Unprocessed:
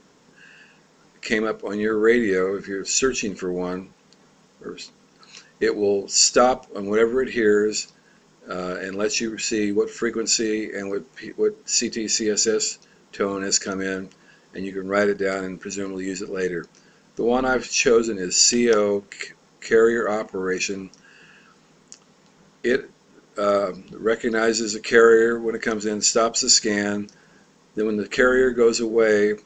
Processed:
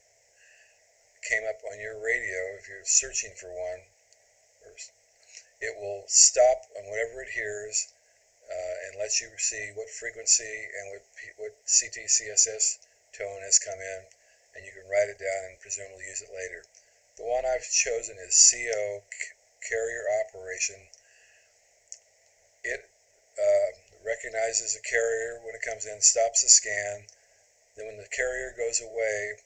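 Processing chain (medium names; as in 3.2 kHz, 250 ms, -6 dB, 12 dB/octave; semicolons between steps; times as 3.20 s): FFT filter 110 Hz 0 dB, 170 Hz -29 dB, 280 Hz -30 dB, 650 Hz +11 dB, 1.2 kHz -29 dB, 2 kHz +10 dB, 3.6 kHz -11 dB, 5.8 kHz +9 dB, 8.4 kHz +11 dB; trim -8.5 dB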